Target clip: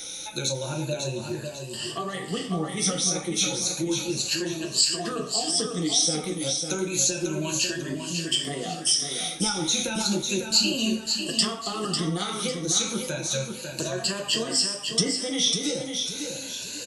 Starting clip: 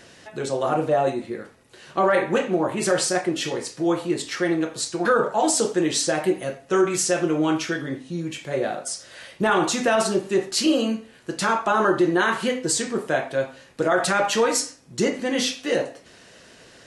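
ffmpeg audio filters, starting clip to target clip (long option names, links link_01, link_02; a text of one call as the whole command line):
ffmpeg -i in.wav -filter_complex "[0:a]afftfilt=real='re*pow(10,18/40*sin(2*PI*(1.4*log(max(b,1)*sr/1024/100)/log(2)-(0.32)*(pts-256)/sr)))':imag='im*pow(10,18/40*sin(2*PI*(1.4*log(max(b,1)*sr/1024/100)/log(2)-(0.32)*(pts-256)/sr)))':win_size=1024:overlap=0.75,acrossover=split=5700[link_01][link_02];[link_02]acompressor=threshold=-40dB:ratio=4:attack=1:release=60[link_03];[link_01][link_03]amix=inputs=2:normalize=0,bandreject=frequency=60:width_type=h:width=6,bandreject=frequency=120:width_type=h:width=6,acrossover=split=230[link_04][link_05];[link_05]acompressor=threshold=-31dB:ratio=5[link_06];[link_04][link_06]amix=inputs=2:normalize=0,aexciter=amount=7.8:drive=1:freq=2700,flanger=delay=9.9:depth=5.2:regen=-49:speed=0.85:shape=sinusoidal,aecho=1:1:548|1096|1644|2192:0.501|0.185|0.0686|0.0254,volume=1.5dB" out.wav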